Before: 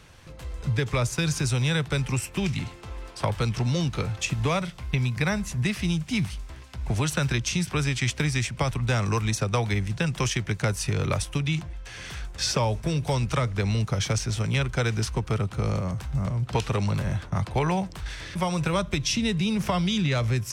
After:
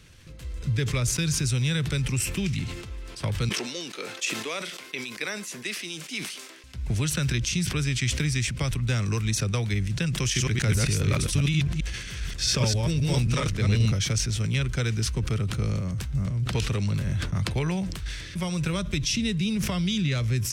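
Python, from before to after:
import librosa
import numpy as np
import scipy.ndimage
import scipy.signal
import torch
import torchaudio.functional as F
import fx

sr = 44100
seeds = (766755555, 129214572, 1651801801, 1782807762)

y = fx.highpass(x, sr, hz=330.0, slope=24, at=(3.49, 6.64))
y = fx.reverse_delay(y, sr, ms=133, wet_db=0, at=(10.21, 13.92))
y = fx.peak_eq(y, sr, hz=830.0, db=-12.5, octaves=1.4)
y = fx.sustainer(y, sr, db_per_s=47.0)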